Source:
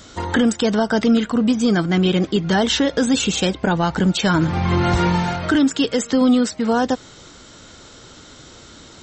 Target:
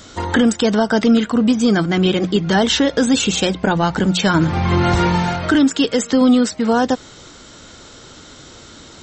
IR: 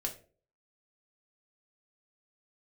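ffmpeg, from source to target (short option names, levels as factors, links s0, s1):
-af "bandreject=f=60:t=h:w=6,bandreject=f=120:t=h:w=6,bandreject=f=180:t=h:w=6,volume=1.33"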